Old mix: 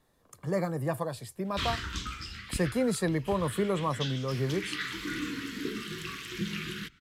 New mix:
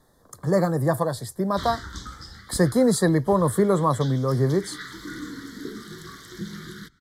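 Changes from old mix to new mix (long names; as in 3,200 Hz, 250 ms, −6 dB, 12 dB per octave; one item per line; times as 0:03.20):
speech +9.0 dB
master: add Butterworth band-reject 2,600 Hz, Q 1.5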